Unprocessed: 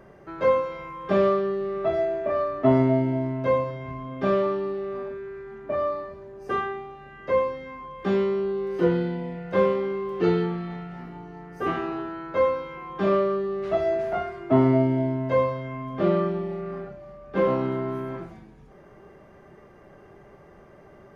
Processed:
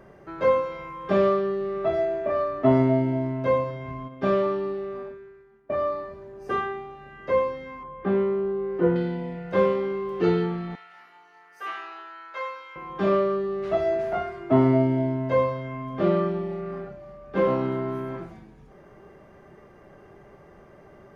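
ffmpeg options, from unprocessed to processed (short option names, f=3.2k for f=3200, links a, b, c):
-filter_complex "[0:a]asplit=3[a][b][c];[a]afade=t=out:st=4.07:d=0.02[d];[b]agate=range=-33dB:threshold=-30dB:ratio=3:release=100:detection=peak,afade=t=in:st=4.07:d=0.02,afade=t=out:st=5.84:d=0.02[e];[c]afade=t=in:st=5.84:d=0.02[f];[d][e][f]amix=inputs=3:normalize=0,asettb=1/sr,asplit=3[g][h][i];[g]atrim=end=7.834[j];[h]atrim=start=7.83:end=8.96,asetpts=PTS-STARTPTS,afade=t=in:d=0.004:c=qsin,afade=t=out:st=1.126:d=0.004:c=qsin,lowpass=1.8k[k];[i]atrim=start=8.956[l];[j][k]acrossfade=d=0.004:c1=hsin:c2=qsin[m];[m][l]acrossfade=d=0.004:c1=qsin:c2=hsin,asettb=1/sr,asplit=3[n][o][p];[n]atrim=end=10.754[q];[o]atrim=start=10.75:end=12.76,asetpts=PTS-STARTPTS,afade=t=in:d=0.004:c=qsin,afade=t=out:st=2.006:d=0.004:c=qsin,highpass=1.3k[r];[p]atrim=start=12.756[s];[q][r]acrossfade=d=0.004:c1=hsin:c2=qsin[t];[t][s]acrossfade=d=0.004:c1=qsin:c2=hsin"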